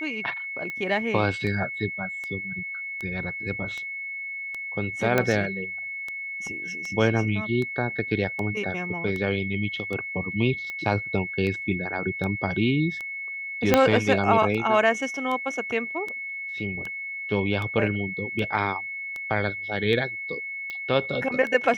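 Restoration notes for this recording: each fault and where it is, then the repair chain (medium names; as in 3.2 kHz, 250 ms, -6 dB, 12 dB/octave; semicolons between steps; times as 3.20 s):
tick 78 rpm -20 dBFS
whine 2.2 kHz -31 dBFS
5.18 s: pop -8 dBFS
13.74 s: pop -3 dBFS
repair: de-click; band-stop 2.2 kHz, Q 30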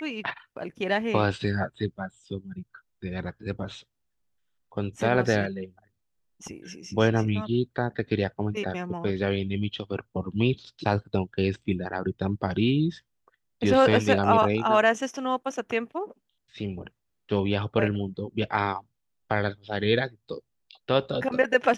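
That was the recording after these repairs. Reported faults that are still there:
13.74 s: pop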